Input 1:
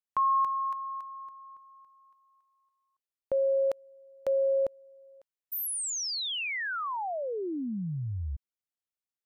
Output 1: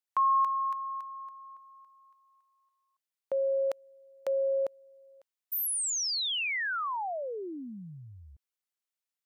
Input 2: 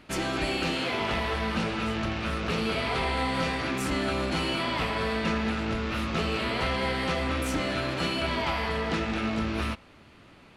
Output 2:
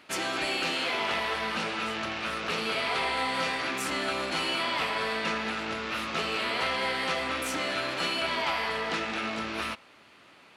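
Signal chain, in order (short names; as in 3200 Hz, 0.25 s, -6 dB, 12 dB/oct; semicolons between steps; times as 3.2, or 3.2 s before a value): HPF 710 Hz 6 dB/oct; gain +2 dB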